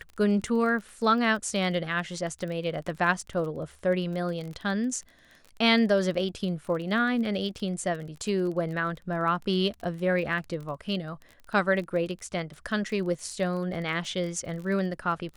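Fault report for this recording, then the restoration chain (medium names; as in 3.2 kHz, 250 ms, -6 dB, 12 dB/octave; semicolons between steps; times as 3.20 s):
crackle 26 per s -35 dBFS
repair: de-click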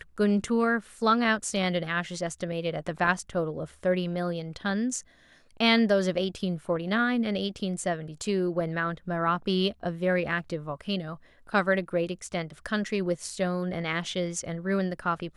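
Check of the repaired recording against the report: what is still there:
nothing left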